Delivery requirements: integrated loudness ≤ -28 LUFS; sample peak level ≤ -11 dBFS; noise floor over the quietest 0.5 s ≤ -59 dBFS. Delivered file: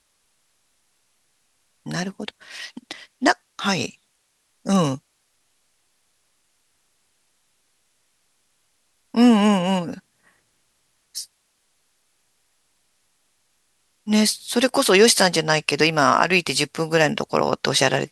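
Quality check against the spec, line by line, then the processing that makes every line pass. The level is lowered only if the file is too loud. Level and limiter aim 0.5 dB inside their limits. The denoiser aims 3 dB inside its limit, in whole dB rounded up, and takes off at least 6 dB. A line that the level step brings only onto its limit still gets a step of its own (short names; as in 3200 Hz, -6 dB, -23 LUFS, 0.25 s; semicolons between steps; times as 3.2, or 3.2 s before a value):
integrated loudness -19.5 LUFS: fail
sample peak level -2.0 dBFS: fail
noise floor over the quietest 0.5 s -68 dBFS: OK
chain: gain -9 dB; limiter -11.5 dBFS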